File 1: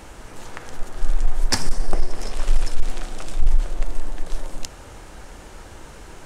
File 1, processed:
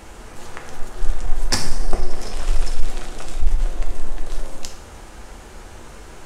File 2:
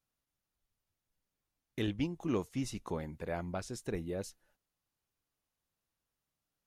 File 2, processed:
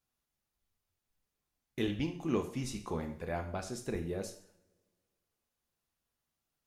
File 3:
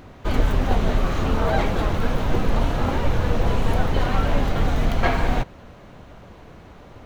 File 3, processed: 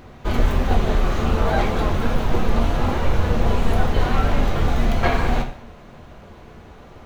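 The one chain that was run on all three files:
two-slope reverb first 0.54 s, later 2 s, from -26 dB, DRR 4.5 dB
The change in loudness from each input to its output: +0.5 LU, +1.0 LU, +1.5 LU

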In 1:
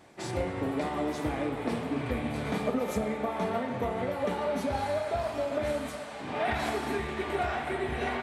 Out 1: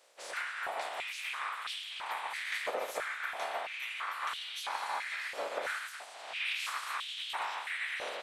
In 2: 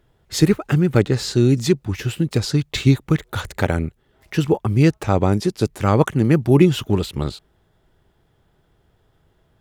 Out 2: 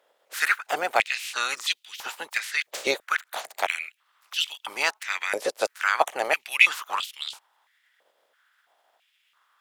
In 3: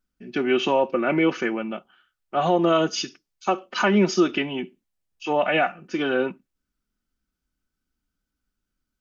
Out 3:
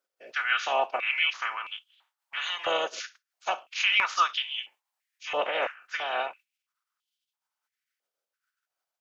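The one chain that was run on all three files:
spectral peaks clipped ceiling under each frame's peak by 25 dB; step-sequenced high-pass 3 Hz 540–3200 Hz; trim -10.5 dB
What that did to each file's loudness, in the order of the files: -5.0 LU, -7.0 LU, -5.0 LU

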